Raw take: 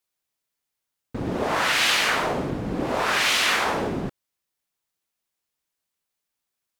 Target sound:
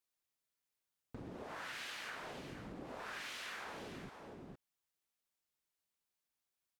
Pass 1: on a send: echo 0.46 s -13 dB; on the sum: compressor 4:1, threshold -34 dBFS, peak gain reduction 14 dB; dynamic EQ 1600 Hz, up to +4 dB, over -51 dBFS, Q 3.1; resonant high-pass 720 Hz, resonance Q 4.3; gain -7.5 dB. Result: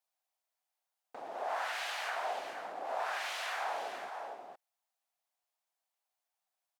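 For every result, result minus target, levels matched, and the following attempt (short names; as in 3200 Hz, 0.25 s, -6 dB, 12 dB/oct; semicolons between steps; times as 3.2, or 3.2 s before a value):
compressor: peak gain reduction -5.5 dB; 1000 Hz band +4.5 dB
on a send: echo 0.46 s -13 dB; on the sum: compressor 4:1, threshold -41.5 dBFS, peak gain reduction 19.5 dB; dynamic EQ 1600 Hz, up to +4 dB, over -51 dBFS, Q 3.1; resonant high-pass 720 Hz, resonance Q 4.3; gain -7.5 dB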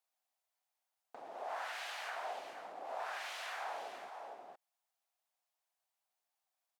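1000 Hz band +4.5 dB
on a send: echo 0.46 s -13 dB; on the sum: compressor 4:1, threshold -41.5 dBFS, peak gain reduction 19.5 dB; dynamic EQ 1600 Hz, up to +4 dB, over -51 dBFS, Q 3.1; gain -7.5 dB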